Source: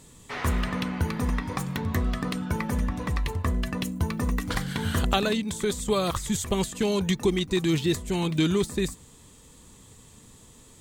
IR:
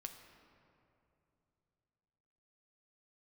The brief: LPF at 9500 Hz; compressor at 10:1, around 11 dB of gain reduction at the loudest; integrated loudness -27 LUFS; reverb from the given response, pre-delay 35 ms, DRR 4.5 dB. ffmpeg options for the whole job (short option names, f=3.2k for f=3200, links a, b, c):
-filter_complex "[0:a]lowpass=9.5k,acompressor=threshold=-30dB:ratio=10,asplit=2[a][b];[1:a]atrim=start_sample=2205,adelay=35[c];[b][c]afir=irnorm=-1:irlink=0,volume=-0.5dB[d];[a][d]amix=inputs=2:normalize=0,volume=7dB"